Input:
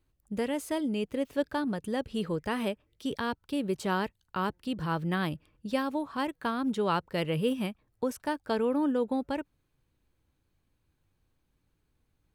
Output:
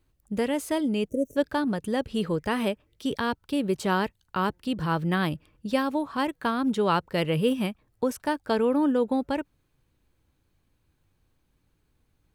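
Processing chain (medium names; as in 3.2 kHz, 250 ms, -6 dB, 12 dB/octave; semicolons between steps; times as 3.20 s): time-frequency box 1.09–1.36 s, 650–5600 Hz -30 dB; trim +4.5 dB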